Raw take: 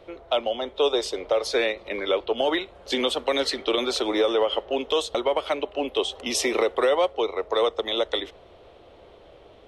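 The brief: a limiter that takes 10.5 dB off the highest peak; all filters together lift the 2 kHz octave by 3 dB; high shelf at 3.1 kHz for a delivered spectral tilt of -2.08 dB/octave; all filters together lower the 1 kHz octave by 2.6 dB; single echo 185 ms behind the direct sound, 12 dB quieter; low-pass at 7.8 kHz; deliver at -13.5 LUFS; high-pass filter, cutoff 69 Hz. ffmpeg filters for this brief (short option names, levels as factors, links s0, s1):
-af "highpass=69,lowpass=7800,equalizer=f=1000:t=o:g=-4.5,equalizer=f=2000:t=o:g=5.5,highshelf=f=3100:g=-3,alimiter=limit=0.0841:level=0:latency=1,aecho=1:1:185:0.251,volume=7.08"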